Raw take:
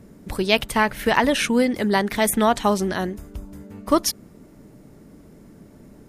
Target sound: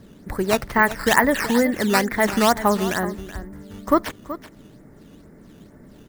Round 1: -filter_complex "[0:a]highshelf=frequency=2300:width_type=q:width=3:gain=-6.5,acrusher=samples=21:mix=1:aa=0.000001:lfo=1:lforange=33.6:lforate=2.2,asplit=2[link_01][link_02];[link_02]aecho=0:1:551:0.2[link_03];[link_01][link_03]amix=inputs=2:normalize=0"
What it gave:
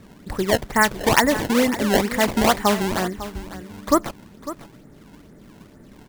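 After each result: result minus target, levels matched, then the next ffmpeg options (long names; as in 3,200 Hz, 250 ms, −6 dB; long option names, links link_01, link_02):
echo 174 ms late; sample-and-hold swept by an LFO: distortion +7 dB
-filter_complex "[0:a]highshelf=frequency=2300:width_type=q:width=3:gain=-6.5,acrusher=samples=21:mix=1:aa=0.000001:lfo=1:lforange=33.6:lforate=2.2,asplit=2[link_01][link_02];[link_02]aecho=0:1:377:0.2[link_03];[link_01][link_03]amix=inputs=2:normalize=0"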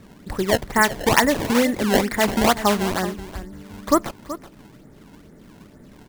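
sample-and-hold swept by an LFO: distortion +7 dB
-filter_complex "[0:a]highshelf=frequency=2300:width_type=q:width=3:gain=-6.5,acrusher=samples=8:mix=1:aa=0.000001:lfo=1:lforange=12.8:lforate=2.2,asplit=2[link_01][link_02];[link_02]aecho=0:1:377:0.2[link_03];[link_01][link_03]amix=inputs=2:normalize=0"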